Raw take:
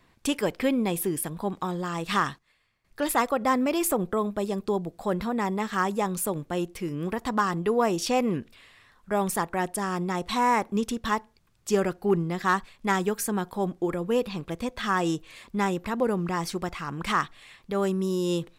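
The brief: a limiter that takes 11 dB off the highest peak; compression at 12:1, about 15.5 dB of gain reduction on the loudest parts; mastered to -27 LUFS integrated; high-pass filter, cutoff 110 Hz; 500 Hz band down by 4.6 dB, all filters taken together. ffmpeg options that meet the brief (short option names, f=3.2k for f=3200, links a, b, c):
-af "highpass=110,equalizer=f=500:t=o:g=-6,acompressor=threshold=-36dB:ratio=12,volume=15dB,alimiter=limit=-17dB:level=0:latency=1"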